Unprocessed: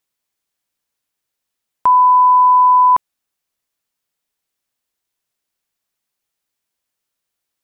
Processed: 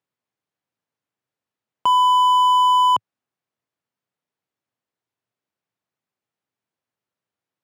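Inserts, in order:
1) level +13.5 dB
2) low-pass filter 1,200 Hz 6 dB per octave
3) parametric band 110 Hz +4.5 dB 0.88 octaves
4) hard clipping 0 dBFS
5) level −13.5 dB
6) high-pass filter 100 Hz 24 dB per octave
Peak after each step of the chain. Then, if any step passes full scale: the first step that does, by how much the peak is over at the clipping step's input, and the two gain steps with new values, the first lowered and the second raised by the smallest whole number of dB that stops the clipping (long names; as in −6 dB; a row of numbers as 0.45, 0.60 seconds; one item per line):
+7.0, +5.0, +5.5, 0.0, −13.5, −10.5 dBFS
step 1, 5.5 dB
step 1 +7.5 dB, step 5 −7.5 dB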